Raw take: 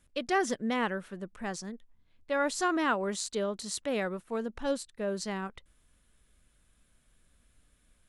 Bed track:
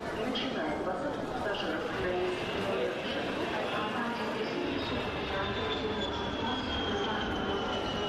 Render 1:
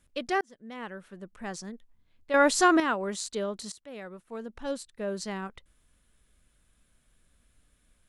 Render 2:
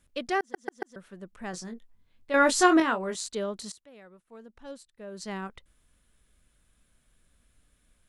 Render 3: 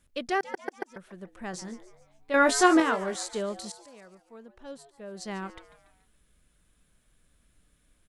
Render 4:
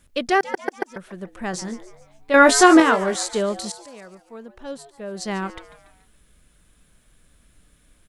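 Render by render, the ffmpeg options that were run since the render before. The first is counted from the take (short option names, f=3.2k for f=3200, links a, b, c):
-filter_complex "[0:a]asplit=5[a][b][c][d][e];[a]atrim=end=0.41,asetpts=PTS-STARTPTS,afade=t=out:st=0.406:d=0.004:c=hsin[f];[b]atrim=start=0.41:end=2.342,asetpts=PTS-STARTPTS,afade=t=in:d=1.21[g];[c]atrim=start=2.338:end=2.802,asetpts=PTS-STARTPTS,volume=8dB[h];[d]atrim=start=2.798:end=3.72,asetpts=PTS-STARTPTS,afade=t=out:st=0.918:d=0.004:c=hsin:silence=0.125893[i];[e]atrim=start=3.72,asetpts=PTS-STARTPTS,afade=t=in:d=1.34:silence=0.125893[j];[f][g]concat=n=2:v=0:a=1[k];[k][h]acrossfade=d=0.004:c1=hsin:c2=hsin[l];[i][j]concat=n=2:v=0:a=1[m];[l][m]acrossfade=d=0.004:c1=hsin:c2=hsin"
-filter_complex "[0:a]asettb=1/sr,asplit=3[a][b][c];[a]atrim=end=1.514[d];[b]atrim=start=1.51:end=3.15,asetpts=PTS-STARTPTS,afade=t=in:d=0.004:c=qsin,afade=t=out:st=1.636:d=0.004:c=qsin,asplit=2[e][f];[f]adelay=22,volume=-7dB[g];[e][g]amix=inputs=2:normalize=0,atrim=end_sample=72324[h];[c]atrim=start=3.146[i];[d][h]acrossfade=d=0.004:c1=hsin:c2=qsin[j];[j][i]acrossfade=d=0.004:c1=qsin:c2=hsin,asplit=7[k][l][m][n][o][p][q];[k]atrim=end=0.542[r];[l]atrim=start=0.398:end=0.542[s];[m]atrim=start=0.398:end=0.542[t];[n]atrim=start=0.398:end=0.542[u];[o]atrim=start=0.958:end=3.91,asetpts=PTS-STARTPTS,afade=t=out:st=2.722:d=0.23:silence=0.334965[v];[p]atrim=start=3.91:end=5.11,asetpts=PTS-STARTPTS,volume=-9.5dB[w];[q]atrim=start=5.11,asetpts=PTS-STARTPTS,afade=t=in:d=0.23:silence=0.334965[x];[r][s]acrossfade=d=0.004:c1=hsin:c2=hsin[y];[y][t]acrossfade=d=0.004:c1=hsin:c2=hsin[z];[z][u]acrossfade=d=0.004:c1=hsin:c2=hsin[aa];[v][w][x]concat=n=3:v=0:a=1[ab];[aa][ab]acrossfade=d=0.004:c1=hsin:c2=hsin"
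-filter_complex "[0:a]asplit=5[a][b][c][d][e];[b]adelay=143,afreqshift=140,volume=-16dB[f];[c]adelay=286,afreqshift=280,volume=-22.6dB[g];[d]adelay=429,afreqshift=420,volume=-29.1dB[h];[e]adelay=572,afreqshift=560,volume=-35.7dB[i];[a][f][g][h][i]amix=inputs=5:normalize=0"
-af "volume=9dB,alimiter=limit=-1dB:level=0:latency=1"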